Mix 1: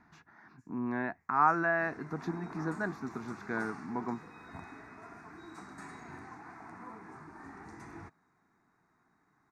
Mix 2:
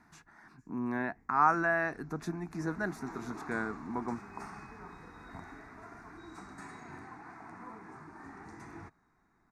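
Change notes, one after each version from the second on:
speech: remove boxcar filter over 5 samples; first sound: remove high-pass 1 kHz; second sound: entry +0.80 s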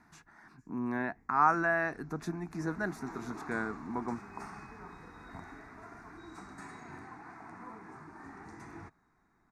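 no change

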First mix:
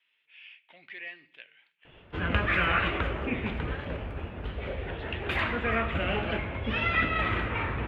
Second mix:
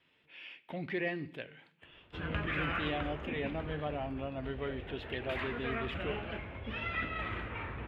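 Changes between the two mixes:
speech: remove band-pass filter 2.6 kHz, Q 1.4; background -10.0 dB

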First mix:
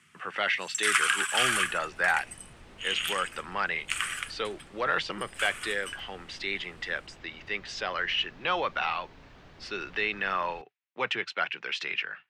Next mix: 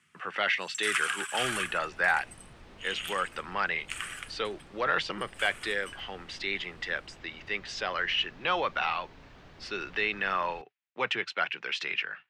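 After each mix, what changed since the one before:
first sound -6.5 dB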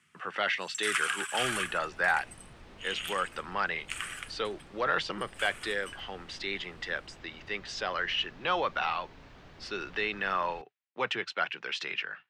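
speech: add peaking EQ 2.3 kHz -4 dB 0.76 oct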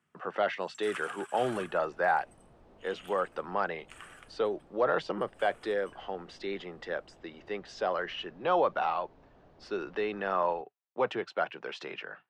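first sound -6.5 dB; second sound -8.5 dB; master: add FFT filter 110 Hz 0 dB, 660 Hz +7 dB, 2.1 kHz -9 dB

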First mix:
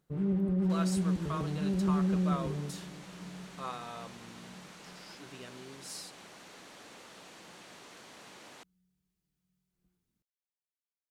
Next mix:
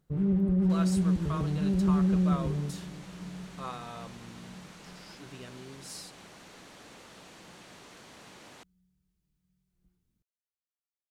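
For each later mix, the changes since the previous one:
master: add bass shelf 130 Hz +12 dB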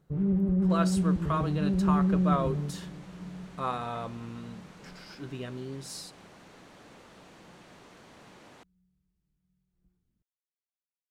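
speech +9.0 dB; master: add treble shelf 2.5 kHz -8 dB

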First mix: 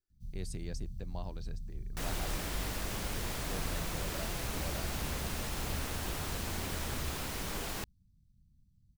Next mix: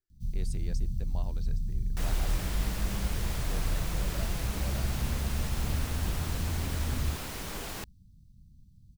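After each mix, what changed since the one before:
first sound +10.5 dB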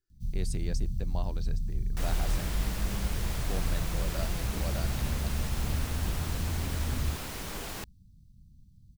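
speech +5.5 dB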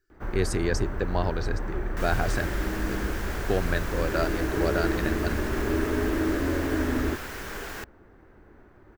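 speech +10.0 dB; first sound: remove inverse Chebyshev band-stop 540–1500 Hz, stop band 70 dB; master: add fifteen-band graphic EQ 160 Hz -6 dB, 400 Hz +6 dB, 1.6 kHz +10 dB, 4 kHz -3 dB, 10 kHz -5 dB

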